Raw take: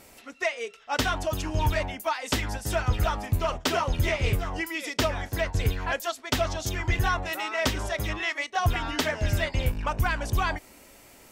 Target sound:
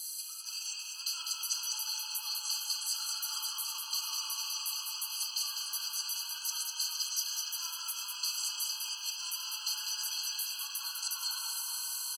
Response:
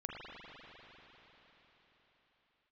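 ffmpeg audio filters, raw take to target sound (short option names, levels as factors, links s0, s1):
-filter_complex "[0:a]alimiter=limit=0.112:level=0:latency=1,aderivative,areverse,acompressor=threshold=0.00398:ratio=16,areverse,asetrate=41013,aresample=44100,aecho=1:1:200|460|798|1237|1809:0.631|0.398|0.251|0.158|0.1[s0];[1:a]atrim=start_sample=2205[s1];[s0][s1]afir=irnorm=-1:irlink=0,asplit=2[s2][s3];[s3]acrusher=samples=39:mix=1:aa=0.000001,volume=0.355[s4];[s2][s4]amix=inputs=2:normalize=0,highshelf=f=3000:t=q:w=3:g=12.5,afftfilt=real='re*eq(mod(floor(b*sr/1024/820),2),1)':imag='im*eq(mod(floor(b*sr/1024/820),2),1)':win_size=1024:overlap=0.75,volume=2.37"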